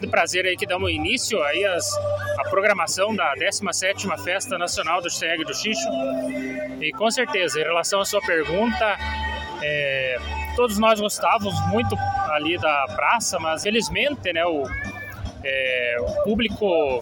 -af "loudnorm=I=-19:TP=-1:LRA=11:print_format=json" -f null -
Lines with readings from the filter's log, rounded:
"input_i" : "-22.2",
"input_tp" : "-6.0",
"input_lra" : "1.7",
"input_thresh" : "-32.3",